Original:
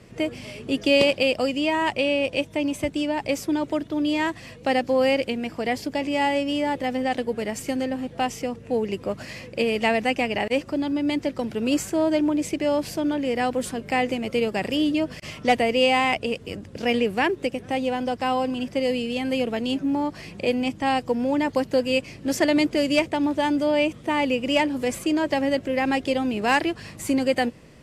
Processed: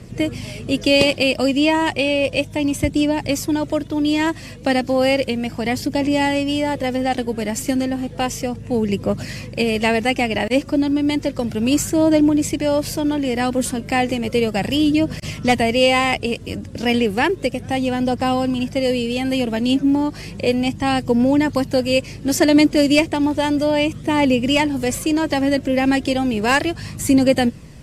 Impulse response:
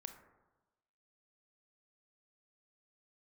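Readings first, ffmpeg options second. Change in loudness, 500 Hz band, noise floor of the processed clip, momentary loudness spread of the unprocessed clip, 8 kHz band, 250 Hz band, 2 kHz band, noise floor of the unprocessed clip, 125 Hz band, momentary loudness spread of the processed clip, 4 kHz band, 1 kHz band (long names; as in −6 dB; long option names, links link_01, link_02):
+5.0 dB, +3.5 dB, −35 dBFS, 7 LU, +9.0 dB, +6.5 dB, +4.0 dB, −44 dBFS, +11.0 dB, 8 LU, +5.5 dB, +3.0 dB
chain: -af "bass=frequency=250:gain=8,treble=frequency=4000:gain=6,aphaser=in_gain=1:out_gain=1:delay=3.6:decay=0.28:speed=0.33:type=triangular,volume=3dB"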